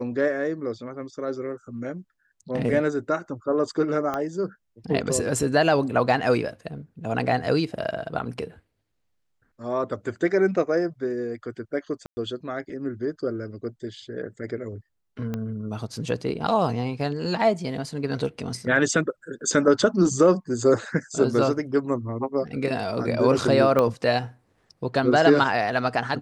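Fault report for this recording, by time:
4.14 pop -15 dBFS
12.06–12.17 gap 0.11 s
15.34 pop -17 dBFS
23.79 pop -10 dBFS

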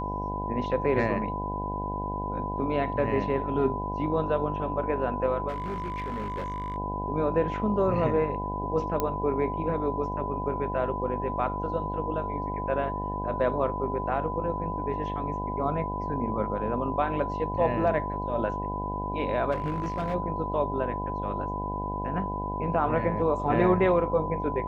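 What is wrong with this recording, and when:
buzz 50 Hz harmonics 18 -34 dBFS
tone 1000 Hz -32 dBFS
5.48–6.76 clipped -28.5 dBFS
9 pop -13 dBFS
19.51–20.15 clipped -24.5 dBFS

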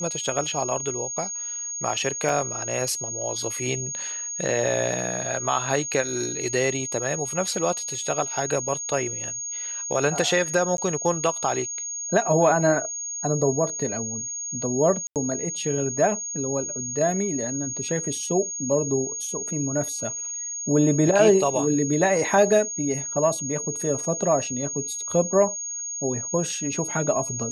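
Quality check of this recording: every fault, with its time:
tone 6600 Hz -29 dBFS
2.29 gap 3.8 ms
10.77–10.78 gap 12 ms
15.07–15.16 gap 88 ms

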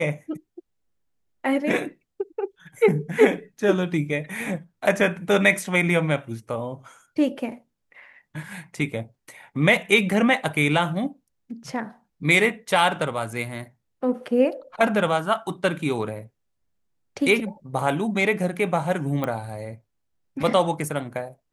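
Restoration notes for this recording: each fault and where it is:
19.24 pop -14 dBFS

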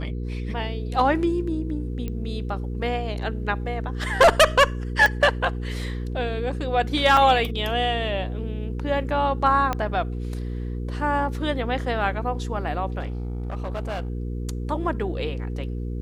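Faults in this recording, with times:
hum 60 Hz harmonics 8 -29 dBFS
2.08 pop -18 dBFS
5.06 pop -8 dBFS
7.17 gap 3.5 ms
9.73 pop -11 dBFS
12.99–14.1 clipped -25 dBFS

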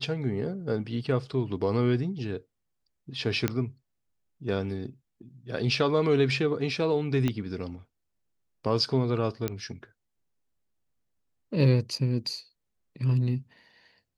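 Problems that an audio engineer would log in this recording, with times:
3.48 pop -11 dBFS
7.28 pop -15 dBFS
9.48 pop -14 dBFS

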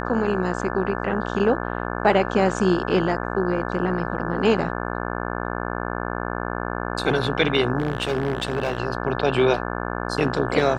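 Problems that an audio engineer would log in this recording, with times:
buzz 60 Hz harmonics 29 -28 dBFS
7.78–8.8 clipped -18 dBFS

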